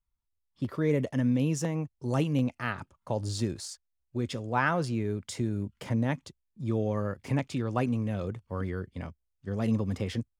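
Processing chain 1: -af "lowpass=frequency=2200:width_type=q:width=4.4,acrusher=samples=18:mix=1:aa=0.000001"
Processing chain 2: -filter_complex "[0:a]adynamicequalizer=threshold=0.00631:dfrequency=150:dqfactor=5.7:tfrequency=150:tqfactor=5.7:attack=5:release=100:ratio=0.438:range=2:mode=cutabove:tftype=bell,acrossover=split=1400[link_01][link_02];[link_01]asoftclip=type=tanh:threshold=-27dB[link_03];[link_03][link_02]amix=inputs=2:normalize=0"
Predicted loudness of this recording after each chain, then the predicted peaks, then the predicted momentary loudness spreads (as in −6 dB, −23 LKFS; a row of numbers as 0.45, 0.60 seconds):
−30.0, −34.5 LKFS; −9.0, −17.5 dBFS; 10, 9 LU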